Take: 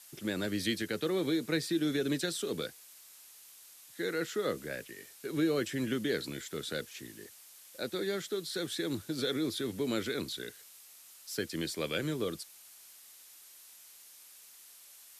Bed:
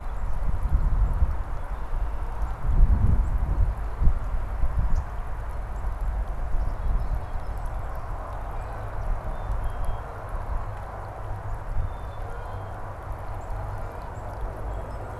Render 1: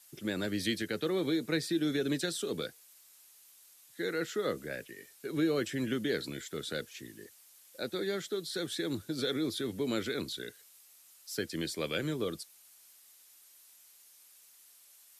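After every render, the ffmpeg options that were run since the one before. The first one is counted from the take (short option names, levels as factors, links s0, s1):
-af "afftdn=nr=6:nf=-55"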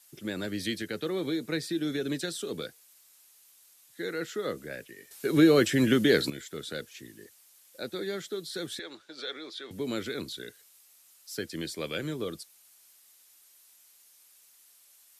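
-filter_complex "[0:a]asettb=1/sr,asplit=3[s0][s1][s2];[s0]atrim=end=8.794[s3];[s1]atrim=start=8.79:end=9.71,asetpts=PTS-STARTPTS,afade=t=in:d=0.004:c=qsin,afade=t=out:st=0.916:d=0.004:c=qsin,highpass=650,lowpass=4600[s4];[s2]atrim=start=9.706[s5];[s3][s4]acrossfade=d=0.004:c1=hsin:c2=qsin[s6];[s6][s5]acrossfade=d=0.004:c1=qsin:c2=hsin,asplit=3[s7][s8][s9];[s7]atrim=end=5.112[s10];[s8]atrim=start=5.108:end=6.302,asetpts=PTS-STARTPTS,volume=3.16[s11];[s9]atrim=start=6.298[s12];[s10][s11]acrossfade=d=0.004:c1=hsin:c2=hsin[s13];[s13][s12]acrossfade=d=0.004:c1=hsin:c2=hsin"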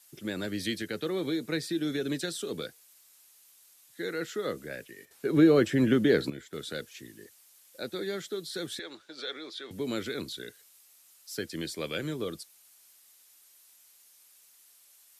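-filter_complex "[0:a]asettb=1/sr,asplit=3[s0][s1][s2];[s0]atrim=end=5.054[s3];[s1]atrim=start=5.05:end=6.53,asetpts=PTS-STARTPTS,afade=t=in:d=0.004:c=qsin,afade=t=out:st=1.476:d=0.004:c=qsin,highshelf=f=2300:g=-10.5[s4];[s2]atrim=start=6.526[s5];[s3][s4]acrossfade=d=0.004:c1=hsin:c2=qsin[s6];[s6][s5]acrossfade=d=0.004:c1=qsin:c2=hsin"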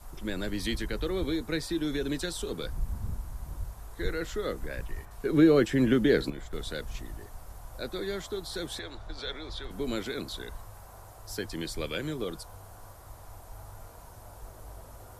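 -filter_complex "[1:a]volume=0.2[s0];[0:a][s0]amix=inputs=2:normalize=0"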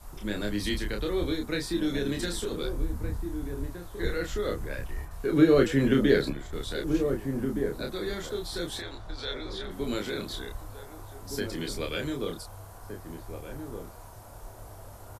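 -filter_complex "[0:a]asplit=2[s0][s1];[s1]adelay=29,volume=0.668[s2];[s0][s2]amix=inputs=2:normalize=0,asplit=2[s3][s4];[s4]adelay=1516,volume=0.447,highshelf=f=4000:g=-34.1[s5];[s3][s5]amix=inputs=2:normalize=0"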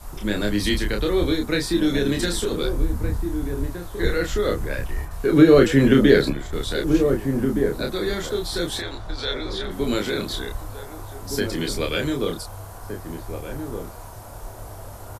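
-af "volume=2.51,alimiter=limit=0.708:level=0:latency=1"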